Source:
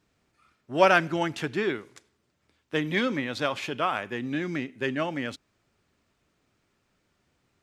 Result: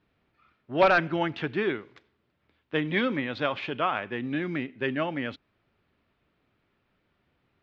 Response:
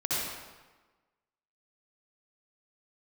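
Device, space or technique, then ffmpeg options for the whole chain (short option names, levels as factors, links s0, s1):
synthesiser wavefolder: -af "aeval=exprs='0.299*(abs(mod(val(0)/0.299+3,4)-2)-1)':c=same,lowpass=f=3700:w=0.5412,lowpass=f=3700:w=1.3066"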